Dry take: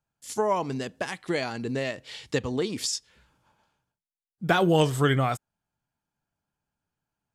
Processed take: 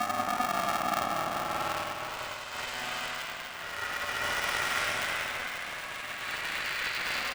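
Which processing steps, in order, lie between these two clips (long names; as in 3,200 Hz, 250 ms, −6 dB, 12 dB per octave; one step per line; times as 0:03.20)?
loose part that buzzes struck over −31 dBFS, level −28 dBFS
on a send: echo with shifted repeats 125 ms, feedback 43%, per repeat +120 Hz, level −14 dB
on the sum: extreme stretch with random phases 7.5×, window 0.25 s, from 0:00.47
spring reverb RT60 2.2 s, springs 50 ms, chirp 45 ms, DRR −1 dB
in parallel at 0 dB: compressor whose output falls as the input rises −29 dBFS
on the sum: Butterworth high-pass 820 Hz 96 dB per octave
ring modulator with a square carrier 250 Hz
level −6 dB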